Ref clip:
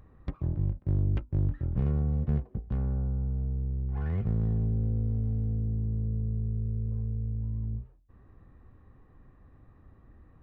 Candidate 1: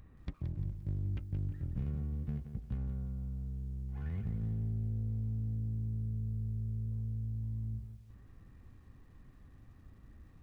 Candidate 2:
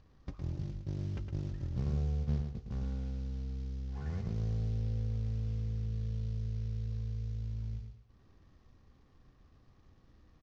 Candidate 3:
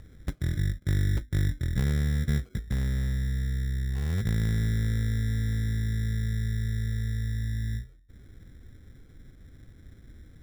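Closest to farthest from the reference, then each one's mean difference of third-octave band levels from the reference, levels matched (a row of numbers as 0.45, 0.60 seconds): 1, 2, 3; 3.0, 4.5, 9.0 decibels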